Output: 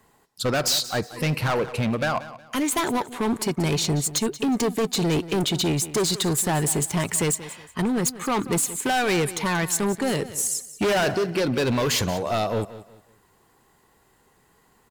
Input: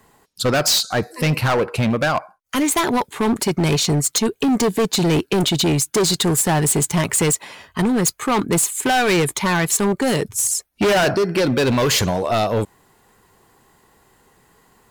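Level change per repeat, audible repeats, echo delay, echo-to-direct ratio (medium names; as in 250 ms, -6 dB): -10.5 dB, 2, 182 ms, -15.0 dB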